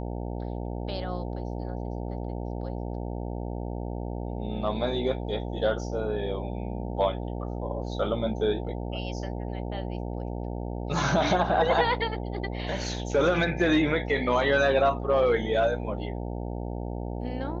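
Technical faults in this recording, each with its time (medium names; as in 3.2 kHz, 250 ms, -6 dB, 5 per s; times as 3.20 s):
buzz 60 Hz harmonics 15 -33 dBFS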